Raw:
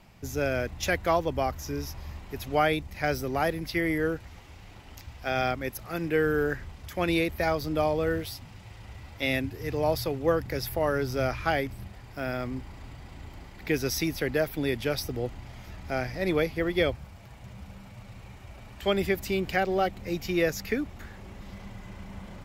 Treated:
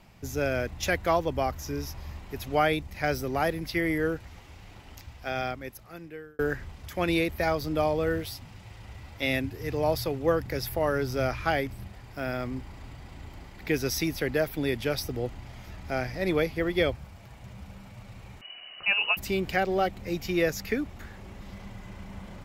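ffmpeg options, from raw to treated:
-filter_complex "[0:a]asettb=1/sr,asplit=3[a][b][c];[a]atrim=end=18.414[d];[b]atrim=start=18.41:end=19.17,asetpts=PTS-STARTPTS,afade=t=in:d=0.004:c=qsin,afade=t=out:st=0.756:d=0.004:c=qsin,lowpass=f=2.6k:t=q:w=0.5098,lowpass=f=2.6k:t=q:w=0.6013,lowpass=f=2.6k:t=q:w=0.9,lowpass=f=2.6k:t=q:w=2.563,afreqshift=-3000[e];[c]atrim=start=19.166[f];[d][e]acrossfade=d=0.004:c1=hsin:c2=qsin[g];[g][f]acrossfade=d=0.004:c1=qsin:c2=hsin,asplit=2[h][i];[h]atrim=end=6.39,asetpts=PTS-STARTPTS,afade=t=out:st=4.86:d=1.53[j];[i]atrim=start=6.39,asetpts=PTS-STARTPTS,afade=t=in:d=0.004:c=hsin[k];[j][k]concat=n=2:v=0:a=1"

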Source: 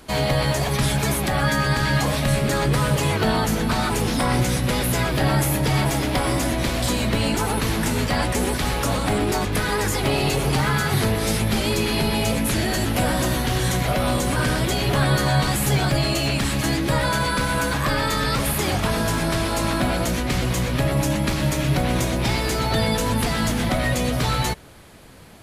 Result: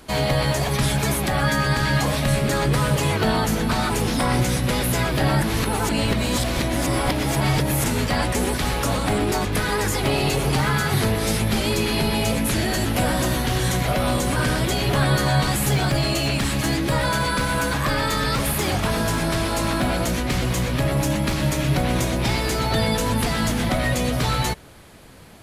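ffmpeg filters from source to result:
-filter_complex "[0:a]asettb=1/sr,asplit=3[a][b][c];[a]atrim=end=15.714[d];[b]atrim=start=15.71:end=21.37,asetpts=PTS-STARTPTS,afade=t=in:d=0.004:c=qsin,afade=t=out:st=5.656:d=0.004:c=qsin,asoftclip=type=hard:threshold=-14.5dB[e];[c]atrim=start=21.366[f];[d][e]acrossfade=d=0.004:c1=hsin:c2=qsin[g];[g][f]acrossfade=d=0.004:c1=qsin:c2=hsin,asplit=3[h][i][j];[h]atrim=end=5.422[k];[i]atrim=start=5.418:end=7.842,asetpts=PTS-STARTPTS,areverse[l];[j]atrim=start=7.838[m];[k][l]acrossfade=d=0.004:c1=hsin:c2=hsin[n];[n][m]acrossfade=d=0.004:c1=hsin:c2=hsin"

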